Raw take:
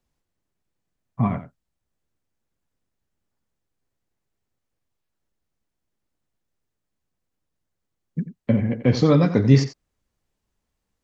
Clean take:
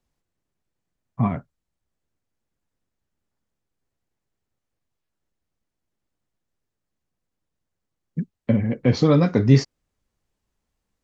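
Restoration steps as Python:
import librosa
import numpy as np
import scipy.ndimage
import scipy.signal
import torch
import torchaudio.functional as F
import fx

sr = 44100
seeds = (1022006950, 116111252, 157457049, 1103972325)

y = fx.fix_echo_inverse(x, sr, delay_ms=88, level_db=-12.5)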